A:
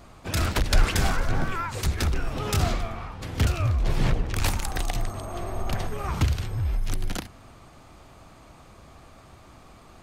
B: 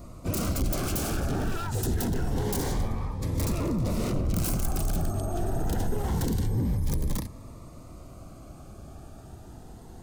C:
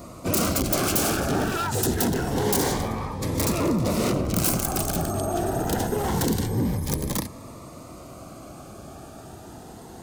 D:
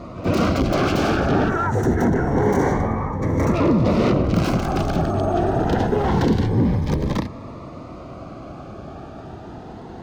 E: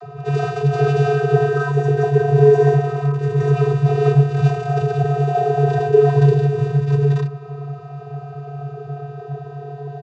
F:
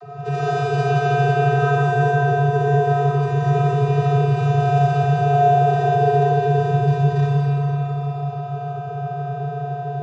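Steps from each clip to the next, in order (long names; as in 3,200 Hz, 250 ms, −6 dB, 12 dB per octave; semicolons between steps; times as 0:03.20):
wave folding −26.5 dBFS; parametric band 2,600 Hz −12.5 dB 2.4 octaves; phaser whose notches keep moving one way rising 0.26 Hz; level +6.5 dB
high-pass filter 260 Hz 6 dB per octave; level +9 dB
gain on a spectral selection 0:01.49–0:03.55, 2,300–5,500 Hz −14 dB; high-frequency loss of the air 240 metres; echo ahead of the sound 96 ms −16 dB; level +6.5 dB
in parallel at −10 dB: wrap-around overflow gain 21 dB; on the sum: channel vocoder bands 32, square 142 Hz; comb filter 2.6 ms, depth 66%; level +5.5 dB
downward compressor, threshold −16 dBFS, peak gain reduction 10 dB; comb and all-pass reverb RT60 3.9 s, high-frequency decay 0.95×, pre-delay 15 ms, DRR −7 dB; level −3.5 dB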